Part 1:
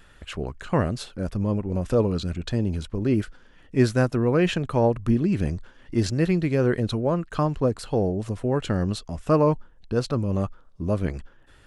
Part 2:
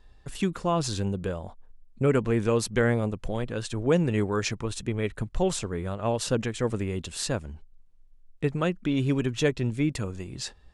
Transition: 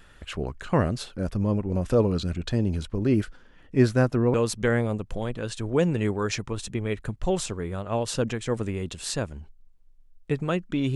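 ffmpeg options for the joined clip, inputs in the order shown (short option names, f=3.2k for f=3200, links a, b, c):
-filter_complex "[0:a]asettb=1/sr,asplit=3[a][b][c];[a]atrim=end=3.424[d];[b]atrim=start=3.42:end=4.34,asetpts=PTS-STARTPTS,afade=t=in:d=0.004:c=qsin,afade=t=out:st=0.916:d=0.004:c=qsin,highshelf=f=3.4k:g=-5[e];[c]atrim=start=4.336[f];[d][e]acrossfade=d=0.004:c1=hsin:c2=qsin[g];[g][f]acrossfade=d=0.004:c1=qsin:c2=hsin,apad=whole_dur=10.95,atrim=end=10.95,atrim=end=4.342[h];[1:a]atrim=start=2.468:end=9.08[i];[h][i]acrossfade=d=0.004:c1=hsin:c2=hsin"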